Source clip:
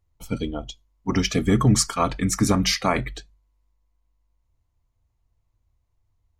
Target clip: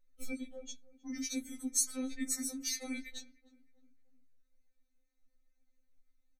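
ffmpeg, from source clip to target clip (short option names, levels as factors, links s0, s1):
-filter_complex "[0:a]acrossover=split=260|3000[s0][s1][s2];[s1]acompressor=threshold=0.0224:ratio=6[s3];[s0][s3][s2]amix=inputs=3:normalize=0,aecho=1:1:3.4:0.91,acrossover=split=7200[s4][s5];[s4]acompressor=threshold=0.0282:ratio=6[s6];[s6][s5]amix=inputs=2:normalize=0,asplit=2[s7][s8];[s8]adelay=309,lowpass=f=1300:p=1,volume=0.106,asplit=2[s9][s10];[s10]adelay=309,lowpass=f=1300:p=1,volume=0.53,asplit=2[s11][s12];[s12]adelay=309,lowpass=f=1300:p=1,volume=0.53,asplit=2[s13][s14];[s14]adelay=309,lowpass=f=1300:p=1,volume=0.53[s15];[s7][s9][s11][s13][s15]amix=inputs=5:normalize=0,afftfilt=real='re*3.46*eq(mod(b,12),0)':imag='im*3.46*eq(mod(b,12),0)':win_size=2048:overlap=0.75,volume=0.631"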